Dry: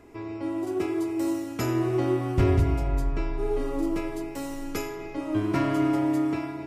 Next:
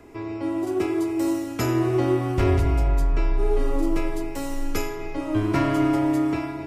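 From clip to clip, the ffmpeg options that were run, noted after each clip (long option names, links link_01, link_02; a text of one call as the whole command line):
ffmpeg -i in.wav -filter_complex "[0:a]asubboost=boost=2.5:cutoff=93,acrossover=split=340|1100[link_01][link_02][link_03];[link_01]alimiter=limit=-19.5dB:level=0:latency=1[link_04];[link_04][link_02][link_03]amix=inputs=3:normalize=0,volume=4dB" out.wav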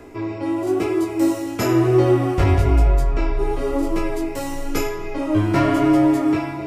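ffmpeg -i in.wav -af "flanger=delay=16:depth=4.6:speed=1,equalizer=frequency=510:width_type=o:width=0.77:gain=2.5,areverse,acompressor=mode=upward:threshold=-34dB:ratio=2.5,areverse,volume=7dB" out.wav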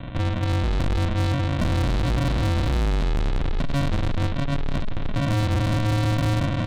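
ffmpeg -i in.wav -af "alimiter=limit=-13.5dB:level=0:latency=1:release=37,aresample=8000,acrusher=samples=19:mix=1:aa=0.000001,aresample=44100,asoftclip=type=tanh:threshold=-28dB,volume=8.5dB" out.wav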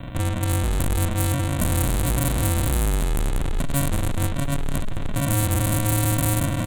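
ffmpeg -i in.wav -af "aexciter=amount=7:drive=9.7:freq=7600,aecho=1:1:206|412|618|824:0.0891|0.0463|0.0241|0.0125" out.wav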